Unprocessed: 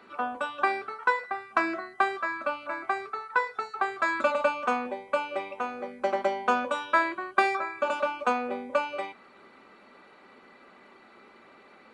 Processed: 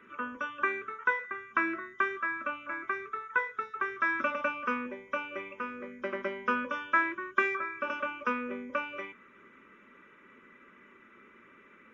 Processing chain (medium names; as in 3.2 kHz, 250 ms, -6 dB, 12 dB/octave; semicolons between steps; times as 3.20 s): knee-point frequency compression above 3 kHz 1.5:1; static phaser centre 1.8 kHz, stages 4